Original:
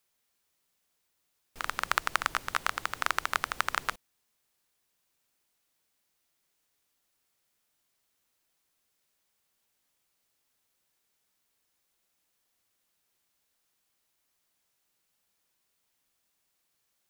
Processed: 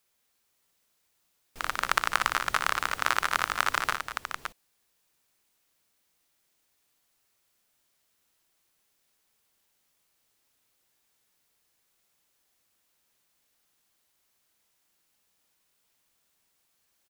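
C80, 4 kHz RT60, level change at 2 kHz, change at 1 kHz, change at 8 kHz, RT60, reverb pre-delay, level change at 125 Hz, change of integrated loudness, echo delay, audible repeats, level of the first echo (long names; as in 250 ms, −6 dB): no reverb audible, no reverb audible, +4.0 dB, +4.0 dB, +4.0 dB, no reverb audible, no reverb audible, +4.0 dB, +3.0 dB, 59 ms, 3, −6.0 dB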